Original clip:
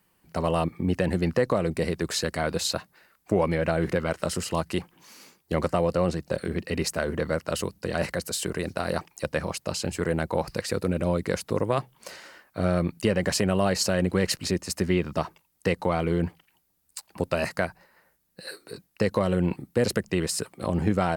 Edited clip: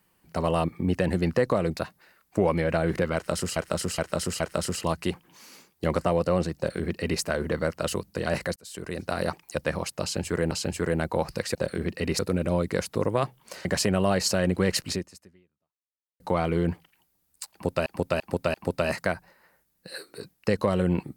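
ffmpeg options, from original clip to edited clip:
-filter_complex "[0:a]asplit=14[s0][s1][s2][s3][s4][s5][s6][s7][s8][s9][s10][s11][s12][s13];[s0]atrim=end=1.772[s14];[s1]atrim=start=2.708:end=4.502[s15];[s2]atrim=start=4.078:end=4.502[s16];[s3]atrim=start=4.078:end=4.502[s17];[s4]atrim=start=4.078:end=8.24,asetpts=PTS-STARTPTS,afade=t=out:st=4.158:d=0.004:c=hsin[s18];[s5]atrim=start=8.24:end=10.192,asetpts=PTS-STARTPTS,afade=t=in:d=0.56[s19];[s6]atrim=start=9.698:end=10.742[s20];[s7]atrim=start=6.248:end=6.892[s21];[s8]atrim=start=10.738:end=12.202[s22];[s9]atrim=start=13.198:end=15.75,asetpts=PTS-STARTPTS,afade=t=out:st=1.272:d=1.28:c=exp[s23];[s10]atrim=start=15.75:end=17.412,asetpts=PTS-STARTPTS,afade=t=in:d=0.004:c=hsin[s24];[s11]atrim=start=17.068:end=17.412[s25];[s12]atrim=start=17.068:end=17.412[s26];[s13]atrim=start=17.068[s27];[s14][s15]acrossfade=d=0.004:c1=hsin:c2=hsin[s28];[s28][s16]acrossfade=d=0.004:c1=hsin:c2=hsin[s29];[s29][s17]acrossfade=d=0.004:c1=hsin:c2=hsin[s30];[s18][s19]concat=n=2:v=0:a=1[s31];[s30][s31]acrossfade=d=0.004:c1=hsin:c2=hsin[s32];[s32][s20]acrossfade=d=0.004:c1=hsin:c2=hsin[s33];[s33][s21]acrossfade=d=0.004:c1=hsin:c2=hsin[s34];[s34][s22]acrossfade=d=0.004:c1=hsin:c2=hsin[s35];[s23][s24]concat=n=2:v=0:a=1[s36];[s35][s36]acrossfade=d=0.004:c1=hsin:c2=hsin[s37];[s37][s25]acrossfade=d=0.004:c1=hsin:c2=hsin[s38];[s38][s26]acrossfade=d=0.004:c1=hsin:c2=hsin[s39];[s39][s27]acrossfade=d=0.004:c1=hsin:c2=hsin"

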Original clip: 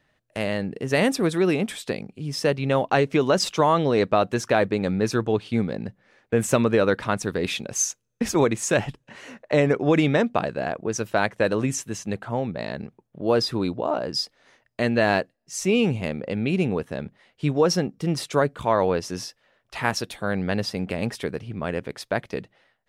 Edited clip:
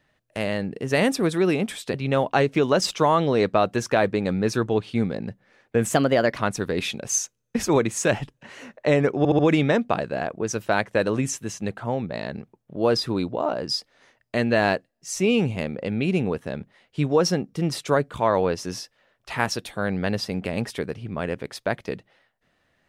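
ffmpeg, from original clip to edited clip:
-filter_complex "[0:a]asplit=7[s0][s1][s2][s3][s4][s5][s6];[s0]atrim=end=1.942[s7];[s1]atrim=start=2.518:end=6.514[s8];[s2]atrim=start=6.51:end=7.04,asetpts=PTS-STARTPTS,asetrate=52038,aresample=44100[s9];[s3]atrim=start=7.036:end=9.912[s10];[s4]atrim=start=9.838:end=9.912[s11];[s5]atrim=start=9.838:end=9.912[s12];[s6]atrim=start=9.838[s13];[s7][s8]acrossfade=d=0.004:c1=hsin:c2=hsin[s14];[s14][s9]acrossfade=d=0.004:c1=hsin:c2=hsin[s15];[s15][s10]acrossfade=d=0.004:c1=hsin:c2=hsin[s16];[s16][s11]acrossfade=d=0.004:c1=hsin:c2=hsin[s17];[s17][s12]acrossfade=d=0.004:c1=hsin:c2=hsin[s18];[s18][s13]acrossfade=d=0.004:c1=hsin:c2=hsin"

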